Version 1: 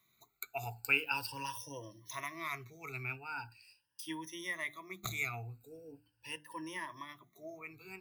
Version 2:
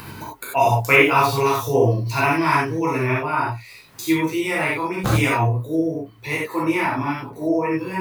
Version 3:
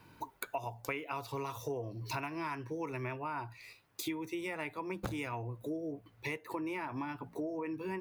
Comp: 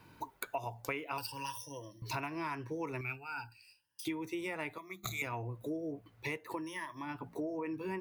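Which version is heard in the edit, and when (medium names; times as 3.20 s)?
3
1.18–2.02 s: from 1
3.01–4.05 s: from 1
4.78–5.22 s: from 1
6.61–7.02 s: from 1, crossfade 0.16 s
not used: 2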